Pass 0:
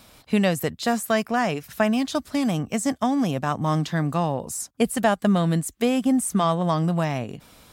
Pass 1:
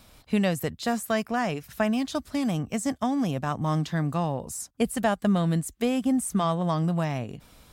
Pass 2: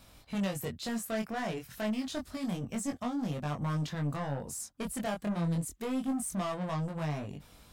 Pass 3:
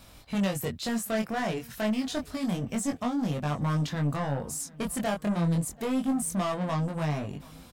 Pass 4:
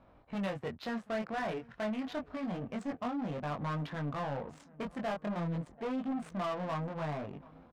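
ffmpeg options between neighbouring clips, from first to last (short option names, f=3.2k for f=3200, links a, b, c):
-af "lowshelf=f=78:g=11,volume=-4.5dB"
-af "asoftclip=type=tanh:threshold=-27dB,flanger=delay=20:depth=3.7:speed=0.28"
-filter_complex "[0:a]asplit=2[a][b];[b]adelay=735,lowpass=f=3.6k:p=1,volume=-23.5dB,asplit=2[c][d];[d]adelay=735,lowpass=f=3.6k:p=1,volume=0.54,asplit=2[e][f];[f]adelay=735,lowpass=f=3.6k:p=1,volume=0.54,asplit=2[g][h];[h]adelay=735,lowpass=f=3.6k:p=1,volume=0.54[i];[a][c][e][g][i]amix=inputs=5:normalize=0,volume=5dB"
-filter_complex "[0:a]adynamicsmooth=sensitivity=7:basefreq=800,asplit=2[a][b];[b]highpass=f=720:p=1,volume=14dB,asoftclip=type=tanh:threshold=-21.5dB[c];[a][c]amix=inputs=2:normalize=0,lowpass=f=2.4k:p=1,volume=-6dB,volume=-6.5dB"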